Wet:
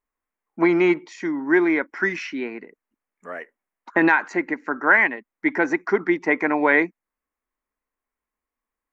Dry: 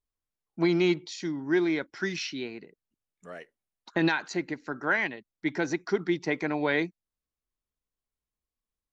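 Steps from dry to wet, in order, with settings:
octave-band graphic EQ 125/250/500/1,000/2,000/4,000 Hz −12/+9/+4/+10/+12/−12 dB

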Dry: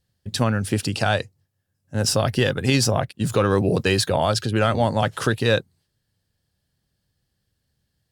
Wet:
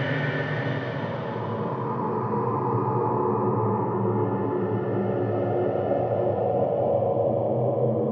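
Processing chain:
partials spread apart or drawn together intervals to 85%
low-pass filter sweep 1,900 Hz → 400 Hz, 0:02.64–0:04.96
extreme stretch with random phases 4.9×, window 1.00 s, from 0:02.86
level −4.5 dB

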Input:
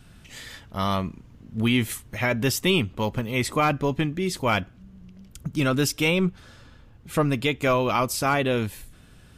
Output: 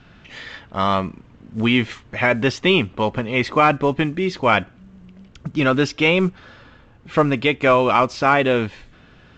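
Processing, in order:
low-pass filter 3,000 Hz 12 dB per octave
low-shelf EQ 180 Hz −10.5 dB
level +8 dB
mu-law 128 kbit/s 16,000 Hz

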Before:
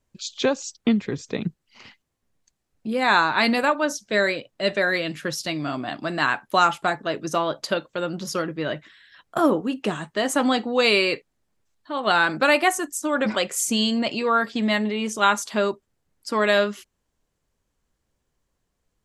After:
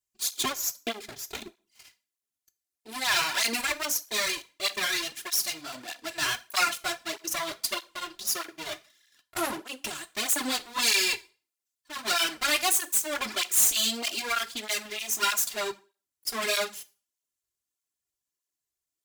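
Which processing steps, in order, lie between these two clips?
lower of the sound and its delayed copy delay 2.9 ms
first-order pre-emphasis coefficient 0.9
leveller curve on the samples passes 2
convolution reverb RT60 0.35 s, pre-delay 4 ms, DRR 13 dB
through-zero flanger with one copy inverted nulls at 1.6 Hz, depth 4.6 ms
level +3.5 dB

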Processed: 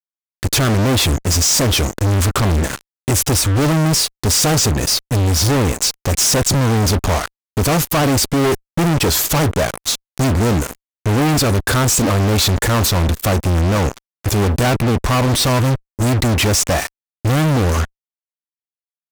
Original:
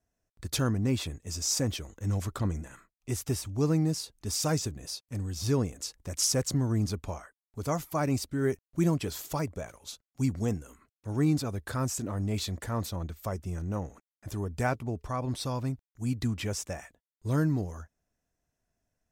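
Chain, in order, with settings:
automatic gain control gain up to 11.5 dB
fuzz pedal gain 38 dB, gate −36 dBFS

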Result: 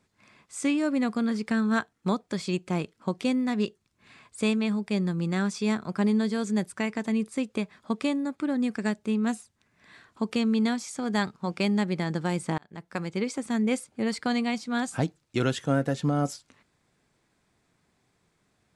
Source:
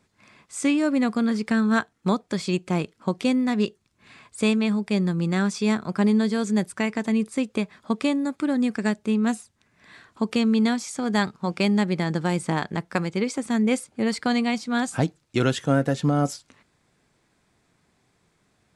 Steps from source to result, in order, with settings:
0:08.21–0:08.63: high-shelf EQ 4,900 Hz −5.5 dB
0:12.58–0:13.16: fade in
level −4 dB

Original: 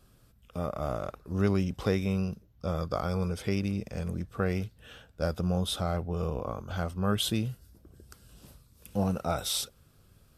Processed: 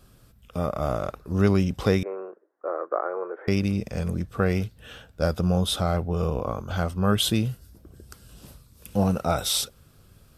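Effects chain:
0:02.03–0:03.48: Chebyshev band-pass filter 340–1,800 Hz, order 4
level +6 dB

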